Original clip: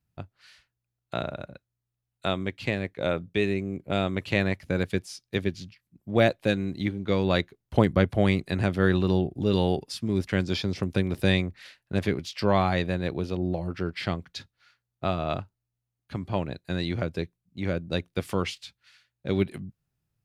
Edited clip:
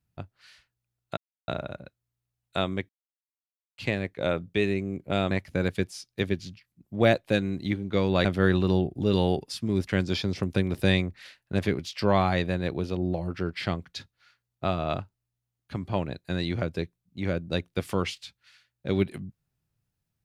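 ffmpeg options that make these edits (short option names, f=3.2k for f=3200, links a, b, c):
-filter_complex "[0:a]asplit=5[a][b][c][d][e];[a]atrim=end=1.17,asetpts=PTS-STARTPTS,afade=t=out:st=1.166:d=0.004:c=hsin,apad=pad_dur=0.31[f];[b]atrim=start=1.17:end=2.58,asetpts=PTS-STARTPTS,afade=t=in:d=0.004:c=hsin,afade=t=out:st=1.406:d=0.004:c=hsin,apad=pad_dur=0.89[g];[c]atrim=start=2.58:end=4.112,asetpts=PTS-STARTPTS,afade=t=in:d=0.004:c=hsin[h];[d]atrim=start=4.458:end=7.402[i];[e]atrim=start=8.648[j];[f][g][h]concat=n=3:v=0:a=1[k];[k][i]acrossfade=d=0.004:c1=hsin:c2=hsin[l];[l][j]acrossfade=d=0.004:c1=hsin:c2=hsin"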